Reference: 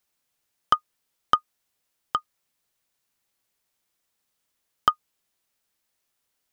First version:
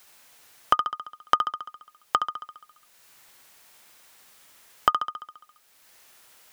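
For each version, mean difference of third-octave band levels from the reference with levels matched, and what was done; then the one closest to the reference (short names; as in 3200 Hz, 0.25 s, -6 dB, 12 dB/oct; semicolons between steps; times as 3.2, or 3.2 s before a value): 7.5 dB: low shelf 460 Hz -10 dB; flutter echo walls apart 11.7 m, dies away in 0.71 s; three-band squash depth 70%; gain +4 dB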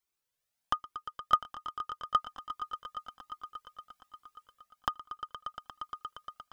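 2.0 dB: AGC gain up to 7.5 dB; swelling echo 0.117 s, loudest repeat 5, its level -15 dB; cascading flanger rising 1.2 Hz; gain -5 dB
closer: second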